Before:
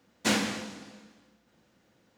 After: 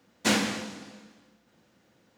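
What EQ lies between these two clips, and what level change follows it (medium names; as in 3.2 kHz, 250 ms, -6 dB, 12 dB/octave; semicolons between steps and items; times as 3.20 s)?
high-pass 65 Hz; +2.0 dB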